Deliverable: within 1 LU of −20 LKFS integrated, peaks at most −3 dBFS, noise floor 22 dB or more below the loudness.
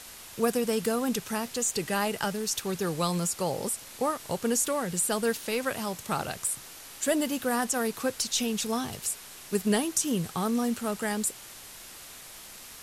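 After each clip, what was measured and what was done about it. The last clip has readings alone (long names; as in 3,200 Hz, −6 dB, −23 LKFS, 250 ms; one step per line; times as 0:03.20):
background noise floor −46 dBFS; target noise floor −51 dBFS; integrated loudness −29.0 LKFS; sample peak −10.0 dBFS; target loudness −20.0 LKFS
→ broadband denoise 6 dB, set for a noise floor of −46 dBFS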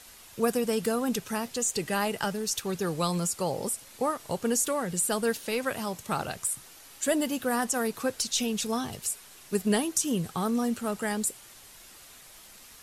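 background noise floor −51 dBFS; integrated loudness −29.0 LKFS; sample peak −10.0 dBFS; target loudness −20.0 LKFS
→ level +9 dB
brickwall limiter −3 dBFS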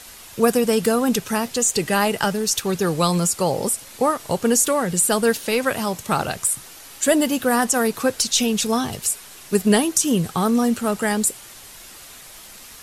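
integrated loudness −20.0 LKFS; sample peak −3.0 dBFS; background noise floor −42 dBFS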